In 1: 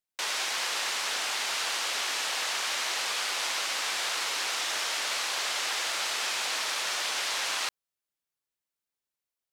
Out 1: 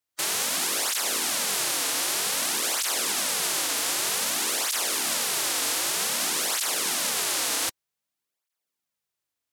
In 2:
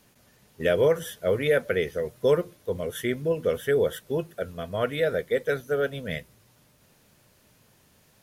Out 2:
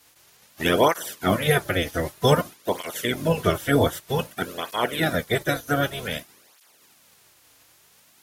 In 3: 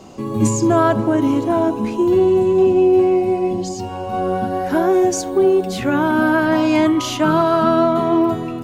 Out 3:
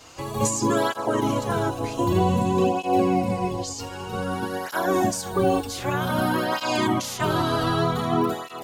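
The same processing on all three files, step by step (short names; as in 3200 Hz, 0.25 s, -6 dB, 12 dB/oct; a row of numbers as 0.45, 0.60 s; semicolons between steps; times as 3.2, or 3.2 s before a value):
spectral limiter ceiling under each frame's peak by 22 dB; dynamic EQ 2200 Hz, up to -7 dB, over -36 dBFS, Q 1.2; tape flanging out of phase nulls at 0.53 Hz, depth 5.5 ms; match loudness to -24 LUFS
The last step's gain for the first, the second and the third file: +8.0, +7.0, -3.5 dB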